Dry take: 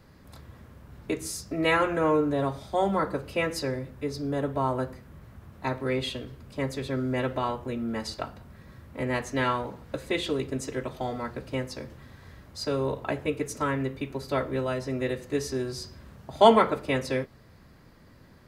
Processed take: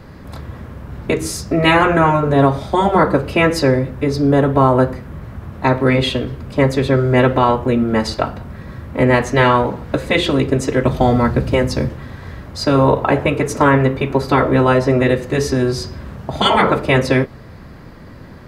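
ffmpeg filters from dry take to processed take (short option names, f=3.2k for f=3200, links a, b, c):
-filter_complex "[0:a]asettb=1/sr,asplit=3[a][b][c];[a]atrim=end=10.854[d];[b]atrim=start=10.85:end=11.89,asetpts=PTS-STARTPTS,afade=t=in:d=0.004:c=qsin,afade=t=out:st=1.036:d=0.004:c=qsin,bass=f=250:g=8,treble=f=4k:g=4[e];[c]atrim=start=11.886[f];[d][e]acrossfade=d=0.004:c1=hsin:c2=qsin[g];[g][f]acrossfade=d=0.004:c1=qsin:c2=hsin,asettb=1/sr,asplit=3[h][i][j];[h]atrim=end=12.754[k];[i]atrim=start=12.75:end=15.04,asetpts=PTS-STARTPTS,afade=t=in:d=0.004:c=qsin,afade=t=out:st=2.286:d=0.004:c=qsin,equalizer=f=890:t=o:w=1.7:g=4.5[l];[j]atrim=start=15.036[m];[k][l]acrossfade=d=0.004:c1=hsin:c2=qsin[n];[n][m]acrossfade=d=0.004:c1=qsin:c2=hsin,afftfilt=real='re*lt(hypot(re,im),0.355)':imag='im*lt(hypot(re,im),0.355)':win_size=1024:overlap=0.75,highshelf=f=3.6k:g=-9.5,alimiter=level_in=18dB:limit=-1dB:release=50:level=0:latency=1,volume=-1dB"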